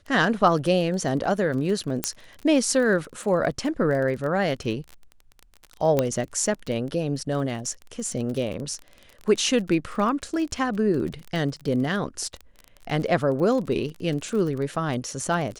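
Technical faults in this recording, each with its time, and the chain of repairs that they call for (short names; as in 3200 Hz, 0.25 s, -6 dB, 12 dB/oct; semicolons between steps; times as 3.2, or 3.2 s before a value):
crackle 27/s -30 dBFS
2.04 pop -5 dBFS
5.99 pop -8 dBFS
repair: de-click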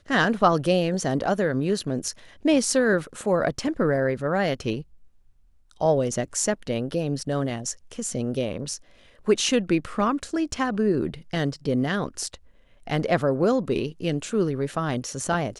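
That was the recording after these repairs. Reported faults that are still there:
none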